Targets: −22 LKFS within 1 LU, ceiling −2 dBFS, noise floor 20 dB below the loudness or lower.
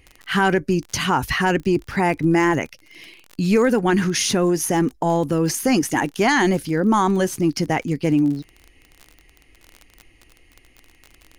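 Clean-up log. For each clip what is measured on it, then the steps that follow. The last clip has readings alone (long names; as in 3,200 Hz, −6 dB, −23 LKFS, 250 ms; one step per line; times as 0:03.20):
crackle rate 36 per second; integrated loudness −20.0 LKFS; sample peak −8.5 dBFS; target loudness −22.0 LKFS
→ click removal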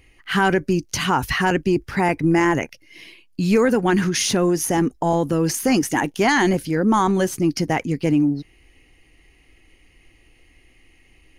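crackle rate 0.088 per second; integrated loudness −20.0 LKFS; sample peak −7.0 dBFS; target loudness −22.0 LKFS
→ level −2 dB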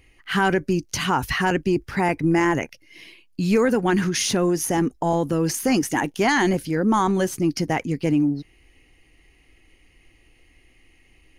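integrated loudness −22.0 LKFS; sample peak −9.0 dBFS; background noise floor −58 dBFS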